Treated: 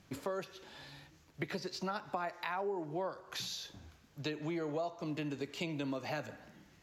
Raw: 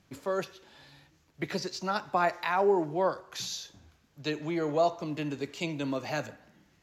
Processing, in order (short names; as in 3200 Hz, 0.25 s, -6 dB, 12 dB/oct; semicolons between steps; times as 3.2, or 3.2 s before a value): compressor 6:1, threshold -38 dBFS, peak gain reduction 16.5 dB; dynamic EQ 6500 Hz, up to -6 dB, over -59 dBFS, Q 1.6; gain +2.5 dB